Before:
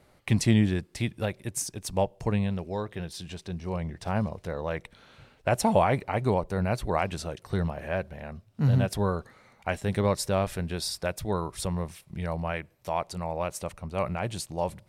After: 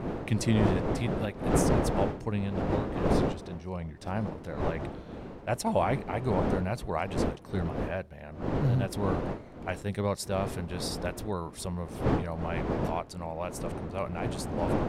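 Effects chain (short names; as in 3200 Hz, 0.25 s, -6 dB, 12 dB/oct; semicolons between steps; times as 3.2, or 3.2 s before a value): wind noise 440 Hz -28 dBFS; attack slew limiter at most 400 dB/s; gain -4.5 dB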